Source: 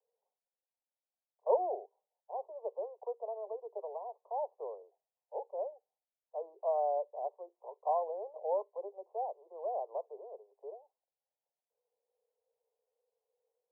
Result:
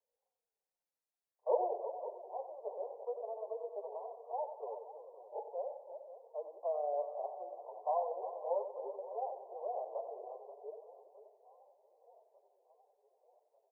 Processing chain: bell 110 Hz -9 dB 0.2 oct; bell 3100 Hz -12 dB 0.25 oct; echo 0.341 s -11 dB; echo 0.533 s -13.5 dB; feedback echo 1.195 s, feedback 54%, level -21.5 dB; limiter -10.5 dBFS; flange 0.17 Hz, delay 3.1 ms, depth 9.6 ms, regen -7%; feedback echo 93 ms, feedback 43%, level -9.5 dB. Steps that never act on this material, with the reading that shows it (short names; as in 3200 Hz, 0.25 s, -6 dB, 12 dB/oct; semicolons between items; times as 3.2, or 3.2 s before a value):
bell 110 Hz: input band starts at 340 Hz; bell 3100 Hz: input band ends at 1100 Hz; limiter -10.5 dBFS: input peak -17.0 dBFS